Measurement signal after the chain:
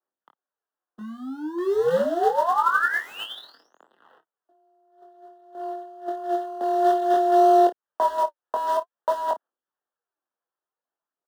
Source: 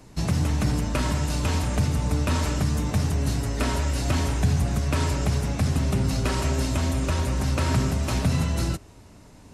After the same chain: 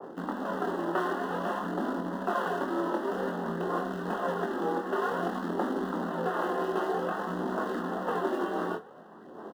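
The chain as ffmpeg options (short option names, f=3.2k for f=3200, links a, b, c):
-filter_complex "[0:a]aphaser=in_gain=1:out_gain=1:delay=4.3:decay=0.63:speed=0.53:type=sinusoidal,asplit=2[a][b];[b]acompressor=threshold=-23dB:ratio=6,volume=2.5dB[c];[a][c]amix=inputs=2:normalize=0,alimiter=limit=-11dB:level=0:latency=1:release=253,aeval=exprs='val(0)*sin(2*PI*170*n/s)':c=same,highpass=f=240:t=q:w=0.5412,highpass=f=240:t=q:w=1.307,lowpass=f=3.3k:t=q:w=0.5176,lowpass=f=3.3k:t=q:w=0.7071,lowpass=f=3.3k:t=q:w=1.932,afreqshift=-53,acrusher=bits=2:mode=log:mix=0:aa=0.000001,asuperstop=centerf=2300:order=4:qfactor=1.7,acrossover=split=310 2200:gain=0.158 1 0.0794[d][e][f];[d][e][f]amix=inputs=3:normalize=0,aecho=1:1:23|53:0.596|0.168,adynamicequalizer=threshold=0.0224:dfrequency=1600:dqfactor=0.7:tfrequency=1600:tqfactor=0.7:attack=5:release=100:ratio=0.375:range=2.5:mode=boostabove:tftype=highshelf,volume=-1dB"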